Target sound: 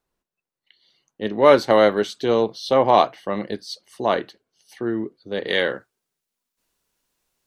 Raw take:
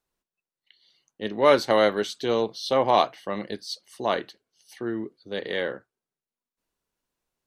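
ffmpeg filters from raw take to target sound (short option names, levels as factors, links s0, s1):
-af "asetnsamples=n=441:p=0,asendcmd='5.48 highshelf g 6.5',highshelf=f=2000:g=-6,volume=1.88"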